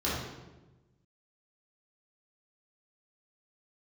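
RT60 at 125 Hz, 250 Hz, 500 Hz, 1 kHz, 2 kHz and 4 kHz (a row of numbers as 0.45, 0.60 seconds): 1.6, 1.4, 1.2, 1.0, 0.90, 0.80 seconds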